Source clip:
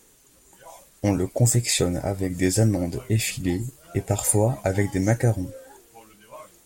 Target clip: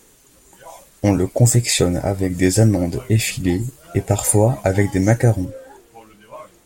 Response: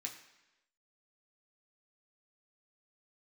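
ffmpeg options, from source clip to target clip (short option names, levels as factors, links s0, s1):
-af "asetnsamples=n=441:p=0,asendcmd='5.45 highshelf g -9.5',highshelf=f=4100:g=-2.5,volume=2"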